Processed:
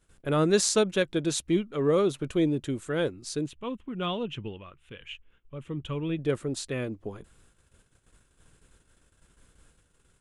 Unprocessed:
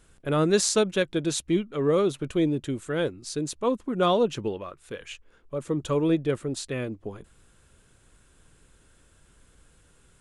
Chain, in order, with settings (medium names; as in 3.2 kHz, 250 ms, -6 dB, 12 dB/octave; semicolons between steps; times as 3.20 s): gate -57 dBFS, range -12 dB; 3.46–6.19 s: FFT filter 120 Hz 0 dB, 570 Hz -12 dB, 810 Hz -9 dB, 1.7 kHz -6 dB, 3 kHz +3 dB, 4.5 kHz -16 dB; trim -1 dB